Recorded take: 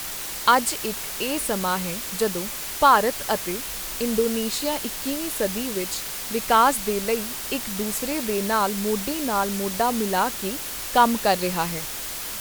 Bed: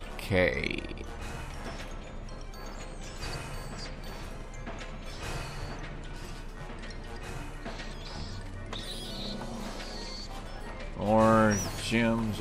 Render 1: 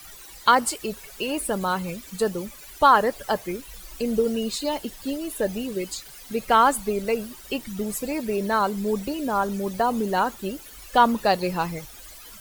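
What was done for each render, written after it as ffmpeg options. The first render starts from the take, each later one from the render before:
-af "afftdn=nr=16:nf=-32"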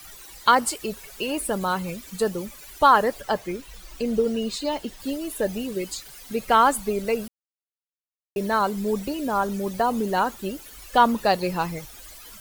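-filter_complex "[0:a]asettb=1/sr,asplit=3[a][b][c];[a]atrim=end=3.214[d];[b]atrim=start=3.21:end=5,asetpts=PTS-STARTPTS,afade=t=in:d=0.004:c=qsin,afade=t=out:st=1.786:d=0.004:c=qsin,equalizer=f=13k:t=o:w=1.1:g=-7.5[e];[c]atrim=start=4.996[f];[d][e]acrossfade=d=0.004:c1=hsin:c2=qsin[g];[g][f]acrossfade=d=0.004:c1=qsin:c2=hsin,asplit=3[h][i][j];[h]atrim=end=7.28,asetpts=PTS-STARTPTS,afade=t=out:st=7.276:d=0.004:c=hsin[k];[i]atrim=start=7.28:end=8.36,asetpts=PTS-STARTPTS,volume=0[l];[j]atrim=start=8.36,asetpts=PTS-STARTPTS,afade=t=in:d=0.004:c=hsin[m];[k][l][m]concat=n=3:v=0:a=1"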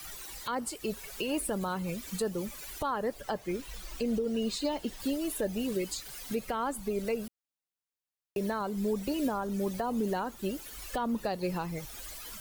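-filter_complex "[0:a]acrossover=split=500[a][b];[b]acompressor=threshold=-35dB:ratio=1.5[c];[a][c]amix=inputs=2:normalize=0,alimiter=limit=-22dB:level=0:latency=1:release=376"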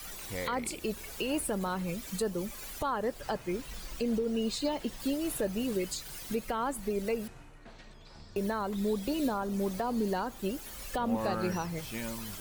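-filter_complex "[1:a]volume=-12.5dB[a];[0:a][a]amix=inputs=2:normalize=0"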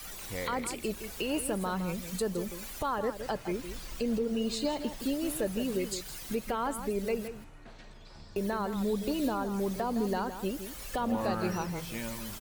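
-filter_complex "[0:a]asplit=2[a][b];[b]adelay=163.3,volume=-10dB,highshelf=f=4k:g=-3.67[c];[a][c]amix=inputs=2:normalize=0"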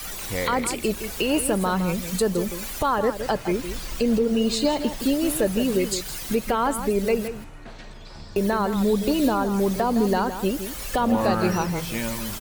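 -af "volume=9.5dB"

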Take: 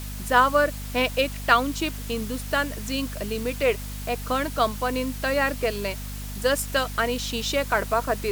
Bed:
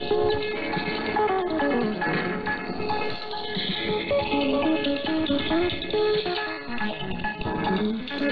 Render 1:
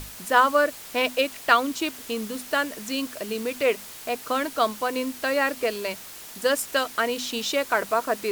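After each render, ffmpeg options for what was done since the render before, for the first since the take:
-af "bandreject=f=50:t=h:w=6,bandreject=f=100:t=h:w=6,bandreject=f=150:t=h:w=6,bandreject=f=200:t=h:w=6,bandreject=f=250:t=h:w=6"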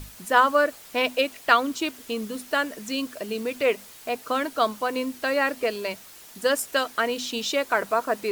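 -af "afftdn=nr=6:nf=-42"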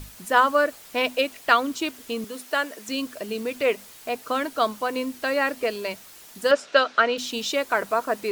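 -filter_complex "[0:a]asettb=1/sr,asplit=3[a][b][c];[a]atrim=end=2.244[d];[b]atrim=start=2.24:end=2.89,asetpts=PTS-STARTPTS,afade=t=in:d=0.004:c=qsin,afade=t=out:st=0.646:d=0.004:c=qsin,highpass=330[e];[c]atrim=start=2.886[f];[d][e]acrossfade=d=0.004:c1=hsin:c2=qsin[g];[g][f]acrossfade=d=0.004:c1=qsin:c2=hsin,asettb=1/sr,asplit=3[h][i][j];[h]atrim=end=6.514[k];[i]atrim=start=6.51:end=7.18,asetpts=PTS-STARTPTS,afade=t=in:d=0.004:c=qsin,afade=t=out:st=0.666:d=0.004:c=qsin,highpass=170,equalizer=f=580:t=q:w=4:g=8,equalizer=f=1.4k:t=q:w=4:g=9,equalizer=f=2.6k:t=q:w=4:g=4,equalizer=f=3.8k:t=q:w=4:g=4,lowpass=f=5.7k:w=0.5412,lowpass=f=5.7k:w=1.3066[l];[j]atrim=start=7.176[m];[k][l]acrossfade=d=0.004:c1=hsin:c2=qsin[n];[n][m]acrossfade=d=0.004:c1=qsin:c2=hsin"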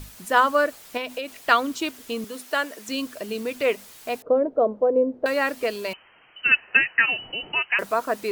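-filter_complex "[0:a]asettb=1/sr,asplit=3[a][b][c];[a]atrim=end=0.974[d];[b]atrim=start=0.97:end=1.42,asetpts=PTS-STARTPTS,afade=t=in:d=0.004:c=qsin,afade=t=out:st=0.446:d=0.004:c=qsin,acompressor=threshold=-26dB:ratio=6:attack=3.2:release=140:knee=1:detection=peak[e];[c]atrim=start=1.416[f];[d][e]acrossfade=d=0.004:c1=hsin:c2=qsin[g];[g][f]acrossfade=d=0.004:c1=qsin:c2=hsin,asettb=1/sr,asplit=3[h][i][j];[h]atrim=end=4.224[k];[i]atrim=start=4.22:end=5.26,asetpts=PTS-STARTPTS,afade=t=in:d=0.004:c=qsin,afade=t=out:st=1.036:d=0.004:c=qsin,lowpass=f=520:t=q:w=3.6[l];[j]atrim=start=5.256[m];[k][l]acrossfade=d=0.004:c1=hsin:c2=qsin[n];[n][m]acrossfade=d=0.004:c1=qsin:c2=hsin,asettb=1/sr,asplit=3[o][p][q];[o]atrim=end=5.934[r];[p]atrim=start=5.93:end=7.79,asetpts=PTS-STARTPTS,afade=t=in:d=0.004:c=qsin,afade=t=out:st=1.856:d=0.004:c=qsin,lowpass=f=2.7k:t=q:w=0.5098,lowpass=f=2.7k:t=q:w=0.6013,lowpass=f=2.7k:t=q:w=0.9,lowpass=f=2.7k:t=q:w=2.563,afreqshift=-3200[s];[q]atrim=start=7.786[t];[r][s]acrossfade=d=0.004:c1=hsin:c2=qsin[u];[u][t]acrossfade=d=0.004:c1=qsin:c2=hsin"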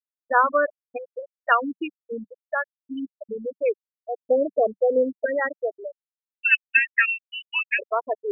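-af "afftfilt=real='re*gte(hypot(re,im),0.251)':imag='im*gte(hypot(re,im),0.251)':win_size=1024:overlap=0.75,equalizer=f=190:t=o:w=0.3:g=-5"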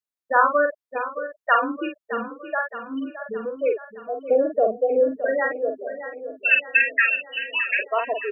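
-filter_complex "[0:a]asplit=2[a][b];[b]adelay=45,volume=-5dB[c];[a][c]amix=inputs=2:normalize=0,aecho=1:1:617|1234|1851|2468|3085|3702:0.251|0.136|0.0732|0.0396|0.0214|0.0115"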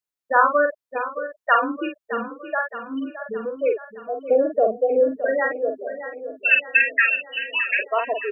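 -af "volume=1dB"

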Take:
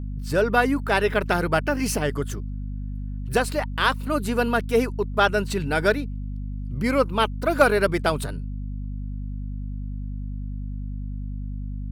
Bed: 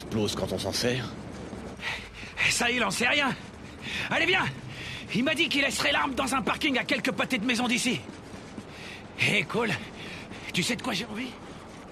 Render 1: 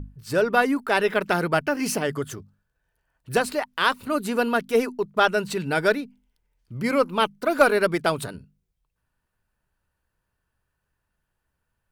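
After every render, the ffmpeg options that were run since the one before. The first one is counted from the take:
-af "bandreject=f=50:t=h:w=6,bandreject=f=100:t=h:w=6,bandreject=f=150:t=h:w=6,bandreject=f=200:t=h:w=6,bandreject=f=250:t=h:w=6"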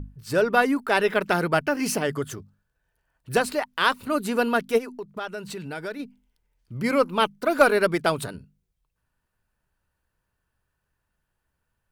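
-filter_complex "[0:a]asplit=3[a][b][c];[a]afade=t=out:st=4.77:d=0.02[d];[b]acompressor=threshold=-35dB:ratio=2.5:attack=3.2:release=140:knee=1:detection=peak,afade=t=in:st=4.77:d=0.02,afade=t=out:st=5.99:d=0.02[e];[c]afade=t=in:st=5.99:d=0.02[f];[d][e][f]amix=inputs=3:normalize=0"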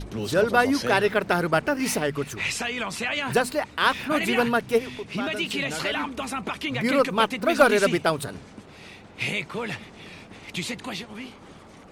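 -filter_complex "[1:a]volume=-3.5dB[a];[0:a][a]amix=inputs=2:normalize=0"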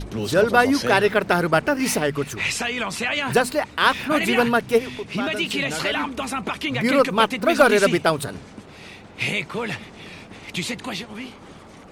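-af "volume=3.5dB,alimiter=limit=-2dB:level=0:latency=1"

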